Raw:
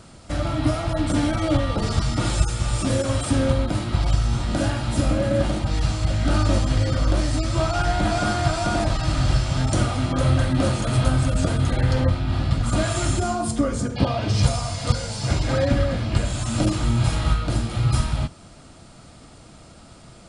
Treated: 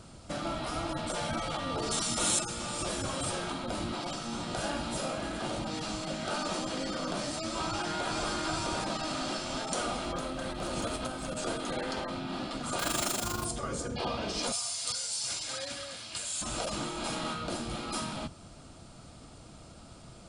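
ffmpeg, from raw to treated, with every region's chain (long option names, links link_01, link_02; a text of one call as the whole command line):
ffmpeg -i in.wav -filter_complex "[0:a]asettb=1/sr,asplit=3[link_01][link_02][link_03];[link_01]atrim=end=1.914[link_04];[link_02]atrim=start=1.91:end=2.39,asetpts=PTS-STARTPTS,afade=type=in:duration=0.004:curve=qsin,afade=type=out:start_time=0.476:duration=0.004:curve=qsin,aemphasis=mode=production:type=75fm,bandreject=frequency=4800:width=6.7[link_05];[link_03]atrim=start=2.386[link_06];[link_04][link_05]acrossfade=duration=0.004:curve1=hsin:curve2=qsin[link_07];[link_07][link_06]acrossfade=duration=0.004:curve1=qsin:curve2=hsin,asettb=1/sr,asplit=3[link_08][link_09][link_10];[link_08]atrim=end=10.054[link_11];[link_09]atrim=start=10.05:end=11.37,asetpts=PTS-STARTPTS,afade=type=in:duration=0.004:curve=qsin,afade=type=out:start_time=1.316:duration=0.004:curve=qsin,acompressor=threshold=-19dB:ratio=10:attack=3.2:release=140:knee=1:detection=peak,bandreject=frequency=298.9:width_type=h:width=4,bandreject=frequency=597.8:width_type=h:width=4,bandreject=frequency=896.7:width_type=h:width=4,bandreject=frequency=1195.6:width_type=h:width=4,bandreject=frequency=1494.5:width_type=h:width=4,bandreject=frequency=1793.4:width_type=h:width=4,bandreject=frequency=2092.3:width_type=h:width=4,bandreject=frequency=2391.2:width_type=h:width=4,bandreject=frequency=2690.1:width_type=h:width=4,bandreject=frequency=2989:width_type=h:width=4,bandreject=frequency=3287.9:width_type=h:width=4,bandreject=frequency=3586.8:width_type=h:width=4,bandreject=frequency=3885.7:width_type=h:width=4,bandreject=frequency=4184.6:width_type=h:width=4,bandreject=frequency=4483.5:width_type=h:width=4,bandreject=frequency=4782.4:width_type=h:width=4,bandreject=frequency=5081.3:width_type=h:width=4,bandreject=frequency=5380.2:width_type=h:width=4,bandreject=frequency=5679.1:width_type=h:width=4,bandreject=frequency=5978:width_type=h:width=4,bandreject=frequency=6276.9:width_type=h:width=4,bandreject=frequency=6575.8:width_type=h:width=4,bandreject=frequency=6874.7:width_type=h:width=4,bandreject=frequency=7173.6:width_type=h:width=4,bandreject=frequency=7472.5:width_type=h:width=4,bandreject=frequency=7771.4:width_type=h:width=4,bandreject=frequency=8070.3:width_type=h:width=4,bandreject=frequency=8369.2:width_type=h:width=4,bandreject=frequency=8668.1:width_type=h:width=4,bandreject=frequency=8967:width_type=h:width=4,bandreject=frequency=9265.9:width_type=h:width=4,bandreject=frequency=9564.8:width_type=h:width=4,bandreject=frequency=9863.7:width_type=h:width=4,bandreject=frequency=10162.6:width_type=h:width=4,bandreject=frequency=10461.5:width_type=h:width=4,asoftclip=type=hard:threshold=-17dB[link_12];[link_10]atrim=start=11.366[link_13];[link_11][link_12]acrossfade=duration=0.004:curve1=hsin:curve2=qsin[link_14];[link_14][link_13]acrossfade=duration=0.004:curve1=qsin:curve2=hsin,asettb=1/sr,asplit=3[link_15][link_16][link_17];[link_15]atrim=end=12.794[link_18];[link_16]atrim=start=12.79:end=13.45,asetpts=PTS-STARTPTS,afade=type=in:duration=0.004:curve=qsin,afade=type=out:start_time=0.656:duration=0.004:curve=qsin,acontrast=37,acrusher=bits=3:mode=log:mix=0:aa=0.000001,tremolo=f=25:d=0.75[link_19];[link_17]atrim=start=13.446[link_20];[link_18][link_19]acrossfade=duration=0.004:curve1=hsin:curve2=qsin[link_21];[link_21][link_20]acrossfade=duration=0.004:curve1=qsin:curve2=hsin,asettb=1/sr,asplit=3[link_22][link_23][link_24];[link_22]atrim=end=14.524[link_25];[link_23]atrim=start=14.52:end=16.42,asetpts=PTS-STARTPTS,afade=type=in:duration=0.004:curve=qsin,afade=type=out:start_time=1.896:duration=0.004:curve=qsin,aderivative,acontrast=78[link_26];[link_24]atrim=start=16.416[link_27];[link_25][link_26]acrossfade=duration=0.004:curve1=hsin:curve2=qsin[link_28];[link_28][link_27]acrossfade=duration=0.004:curve1=qsin:curve2=hsin,afftfilt=real='re*lt(hypot(re,im),0.316)':imag='im*lt(hypot(re,im),0.316)':win_size=1024:overlap=0.75,equalizer=frequency=1900:width_type=o:width=0.45:gain=-4.5,volume=-4.5dB" out.wav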